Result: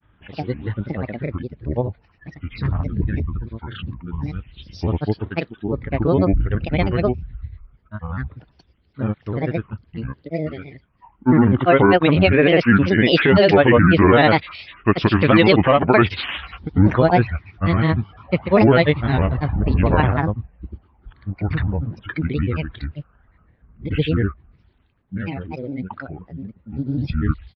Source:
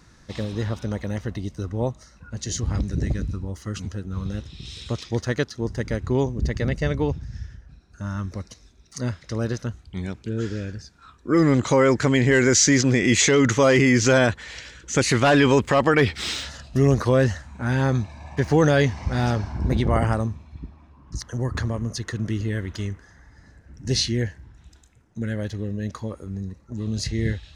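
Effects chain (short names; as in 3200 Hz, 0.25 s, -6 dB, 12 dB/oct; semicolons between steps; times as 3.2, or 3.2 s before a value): downsampling 8000 Hz; spectral noise reduction 10 dB; grains, grains 20/s, pitch spread up and down by 7 st; gain +5.5 dB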